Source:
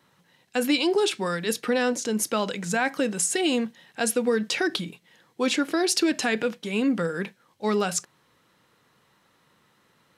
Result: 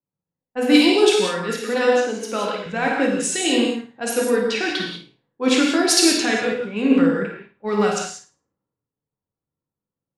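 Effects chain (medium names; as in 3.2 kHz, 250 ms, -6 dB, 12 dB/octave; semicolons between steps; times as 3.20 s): 1.57–2.66 s: high-pass 230 Hz; level-controlled noise filter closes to 600 Hz, open at -19 dBFS; flutter echo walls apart 9.3 m, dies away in 0.4 s; gated-style reverb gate 220 ms flat, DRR -1 dB; three bands expanded up and down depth 70%; trim +1.5 dB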